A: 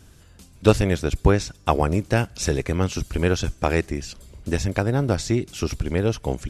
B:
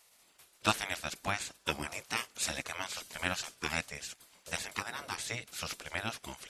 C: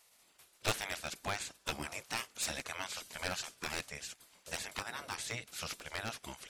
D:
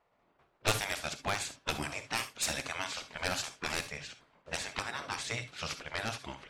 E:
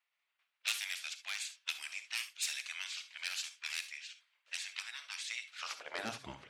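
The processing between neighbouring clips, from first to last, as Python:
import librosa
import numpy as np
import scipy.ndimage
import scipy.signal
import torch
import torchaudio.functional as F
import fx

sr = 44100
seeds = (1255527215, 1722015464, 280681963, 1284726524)

y1 = fx.highpass(x, sr, hz=970.0, slope=6)
y1 = fx.spec_gate(y1, sr, threshold_db=-10, keep='weak')
y2 = np.minimum(y1, 2.0 * 10.0 ** (-26.5 / 20.0) - y1)
y2 = y2 * librosa.db_to_amplitude(-2.0)
y3 = fx.env_lowpass(y2, sr, base_hz=1000.0, full_db=-34.5)
y3 = fx.rev_gated(y3, sr, seeds[0], gate_ms=90, shape='rising', drr_db=10.5)
y3 = y3 * librosa.db_to_amplitude(4.0)
y4 = fx.filter_sweep_highpass(y3, sr, from_hz=2500.0, to_hz=85.0, start_s=5.46, end_s=6.32, q=1.4)
y4 = y4 * librosa.db_to_amplitude(-4.5)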